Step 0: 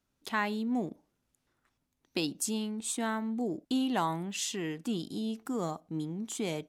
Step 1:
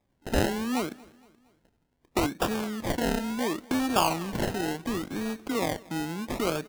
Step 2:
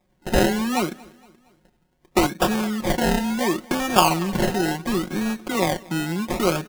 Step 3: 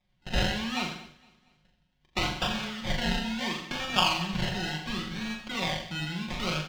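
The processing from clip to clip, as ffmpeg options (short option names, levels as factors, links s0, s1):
-filter_complex "[0:a]acrossover=split=300|6000[s0][s1][s2];[s0]acompressor=threshold=0.00708:ratio=6[s3];[s3][s1][s2]amix=inputs=3:normalize=0,acrusher=samples=30:mix=1:aa=0.000001:lfo=1:lforange=18:lforate=0.71,aecho=1:1:231|462|693:0.0668|0.0321|0.0154,volume=2.24"
-af "aecho=1:1:5.5:0.65,volume=1.88"
-filter_complex "[0:a]firequalizer=gain_entry='entry(120,0);entry(340,-15);entry(600,-8);entry(3100,5);entry(10000,-17)':delay=0.05:min_phase=1,asplit=2[s0][s1];[s1]aecho=0:1:40|84|132.4|185.6|244.2:0.631|0.398|0.251|0.158|0.1[s2];[s0][s2]amix=inputs=2:normalize=0,volume=0.531"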